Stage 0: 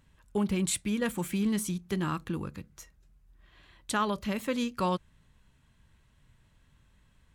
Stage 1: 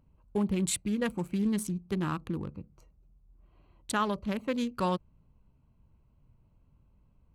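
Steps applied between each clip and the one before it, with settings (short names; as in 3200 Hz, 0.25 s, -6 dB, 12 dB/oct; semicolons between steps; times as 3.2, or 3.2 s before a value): Wiener smoothing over 25 samples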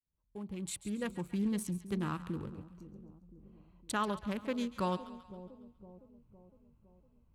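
opening faded in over 1.36 s; split-band echo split 690 Hz, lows 0.51 s, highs 0.138 s, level -14 dB; gain -4.5 dB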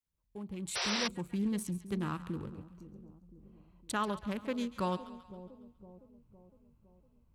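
painted sound noise, 0.75–1.08, 350–6000 Hz -34 dBFS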